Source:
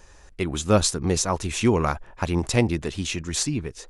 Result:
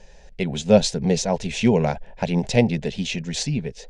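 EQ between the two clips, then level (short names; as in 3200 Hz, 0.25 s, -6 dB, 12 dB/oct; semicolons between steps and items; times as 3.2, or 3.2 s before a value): air absorption 130 m; fixed phaser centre 320 Hz, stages 6; +6.5 dB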